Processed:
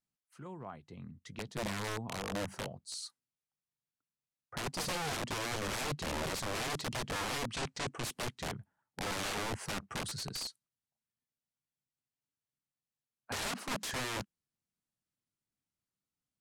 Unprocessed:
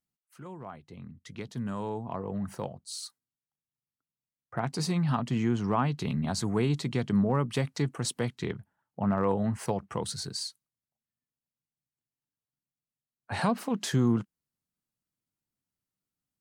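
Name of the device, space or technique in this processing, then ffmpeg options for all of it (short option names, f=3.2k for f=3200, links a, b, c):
overflowing digital effects unit: -filter_complex "[0:a]aeval=exprs='(mod(25.1*val(0)+1,2)-1)/25.1':c=same,lowpass=11k,asettb=1/sr,asplit=3[a][b][c];[a]atrim=end=7.494[d];[b]atrim=start=7.49:end=8.03,asetpts=PTS-STARTPTS,afade=t=in:d=0.004:c=qsin,afade=t=out:st=0.536:d=0.004:c=qsin,lowpass=f=8.9k:w=0.5412,lowpass=f=8.9k:w=1.3066[e];[c]atrim=start=8.026[f];[d][e]acrossfade=d=0.004:c1=hsin:c2=qsin[g];[g][f]acrossfade=d=0.004:c1=qsin:c2=hsin,volume=-3dB"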